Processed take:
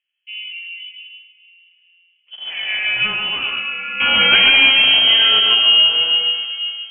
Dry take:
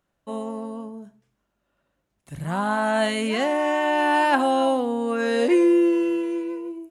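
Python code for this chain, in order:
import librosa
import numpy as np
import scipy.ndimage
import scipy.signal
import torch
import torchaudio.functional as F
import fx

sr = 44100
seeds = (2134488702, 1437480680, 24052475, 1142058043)

p1 = fx.rattle_buzz(x, sr, strikes_db=-31.0, level_db=-24.0)
p2 = scipy.signal.sosfilt(scipy.signal.butter(2, 61.0, 'highpass', fs=sr, output='sos'), p1)
p3 = fx.leveller(p2, sr, passes=3, at=(4.0, 5.39))
p4 = fx.doubler(p3, sr, ms=14.0, db=-4)
p5 = p4 + fx.echo_single(p4, sr, ms=142, db=-3.5, dry=0)
p6 = fx.rev_schroeder(p5, sr, rt60_s=4.0, comb_ms=26, drr_db=9.5)
p7 = fx.env_lowpass(p6, sr, base_hz=940.0, full_db=-6.0)
p8 = fx.freq_invert(p7, sr, carrier_hz=3200)
y = p8 * 10.0 ** (-3.0 / 20.0)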